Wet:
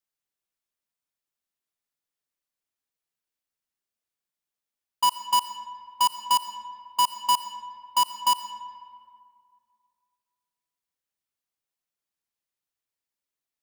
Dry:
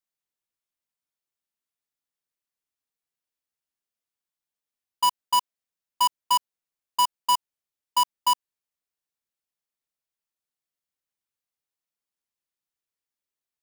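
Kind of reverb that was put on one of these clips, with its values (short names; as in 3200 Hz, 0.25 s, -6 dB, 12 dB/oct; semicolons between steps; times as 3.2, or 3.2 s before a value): digital reverb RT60 2.2 s, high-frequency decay 0.55×, pre-delay 50 ms, DRR 10.5 dB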